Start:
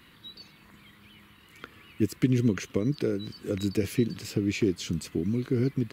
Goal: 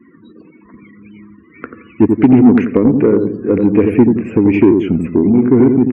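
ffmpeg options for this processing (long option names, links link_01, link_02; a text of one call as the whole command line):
ffmpeg -i in.wav -filter_complex "[0:a]firequalizer=gain_entry='entry(140,0);entry(240,12);entry(2500,7);entry(4000,-17);entry(8100,-6)':delay=0.05:min_phase=1,asplit=2[link_01][link_02];[link_02]adelay=87,lowpass=frequency=900:poles=1,volume=-5dB,asplit=2[link_03][link_04];[link_04]adelay=87,lowpass=frequency=900:poles=1,volume=0.39,asplit=2[link_05][link_06];[link_06]adelay=87,lowpass=frequency=900:poles=1,volume=0.39,asplit=2[link_07][link_08];[link_08]adelay=87,lowpass=frequency=900:poles=1,volume=0.39,asplit=2[link_09][link_10];[link_10]adelay=87,lowpass=frequency=900:poles=1,volume=0.39[link_11];[link_03][link_05][link_07][link_09][link_11]amix=inputs=5:normalize=0[link_12];[link_01][link_12]amix=inputs=2:normalize=0,afftdn=noise_reduction=34:noise_floor=-42,lowshelf=frequency=290:gain=7,acontrast=34,volume=-1dB" out.wav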